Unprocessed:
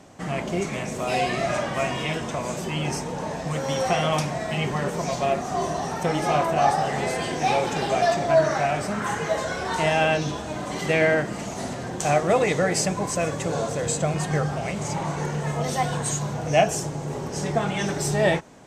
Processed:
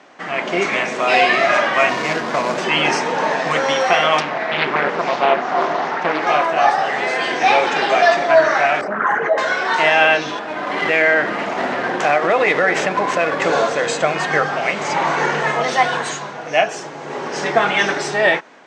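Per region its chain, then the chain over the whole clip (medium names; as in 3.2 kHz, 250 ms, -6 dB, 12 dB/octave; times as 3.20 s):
1.89–2.58 s: median filter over 15 samples + tone controls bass +5 dB, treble +10 dB
4.20–6.27 s: high-pass 41 Hz 24 dB/octave + distance through air 130 m + loudspeaker Doppler distortion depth 0.63 ms
8.81–9.38 s: resonances exaggerated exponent 2 + high-pass 44 Hz + loudspeaker Doppler distortion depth 0.17 ms
10.39–13.42 s: median filter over 9 samples + compression 4:1, threshold -25 dBFS
whole clip: Chebyshev band-pass 300–4900 Hz, order 2; peaking EQ 1.7 kHz +12 dB 2.2 oct; level rider; trim -1 dB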